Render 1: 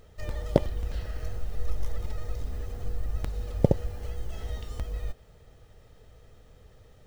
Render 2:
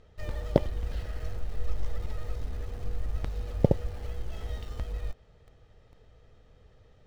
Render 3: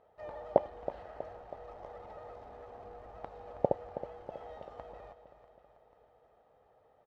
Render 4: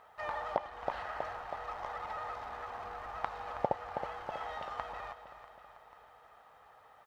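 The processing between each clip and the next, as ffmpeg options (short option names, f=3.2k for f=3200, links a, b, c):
-filter_complex "[0:a]lowpass=5.1k,asplit=2[a][b];[b]acrusher=bits=6:mix=0:aa=0.000001,volume=-9.5dB[c];[a][c]amix=inputs=2:normalize=0,volume=-3.5dB"
-af "bandpass=f=770:t=q:w=2.8:csg=0,aecho=1:1:322|644|966|1288|1610|1932:0.237|0.135|0.077|0.0439|0.025|0.0143,volume=6dB"
-af "lowshelf=f=770:t=q:w=1.5:g=-12.5,alimiter=level_in=3.5dB:limit=-24dB:level=0:latency=1:release=397,volume=-3.5dB,volume=13.5dB"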